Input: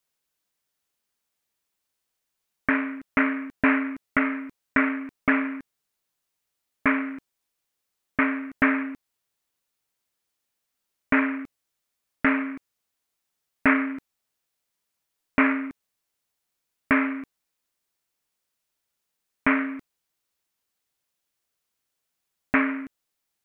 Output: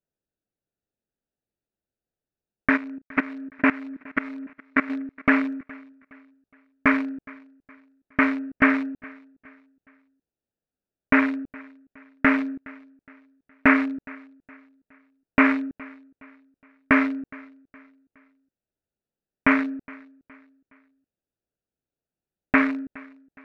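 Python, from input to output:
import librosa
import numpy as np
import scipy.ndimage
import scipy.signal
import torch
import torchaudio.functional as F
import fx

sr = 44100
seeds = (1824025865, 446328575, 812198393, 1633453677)

p1 = fx.wiener(x, sr, points=41)
p2 = fx.level_steps(p1, sr, step_db=19, at=(2.76, 4.89), fade=0.02)
p3 = p2 + fx.echo_feedback(p2, sr, ms=416, feedback_pct=39, wet_db=-23, dry=0)
y = p3 * 10.0 ** (3.0 / 20.0)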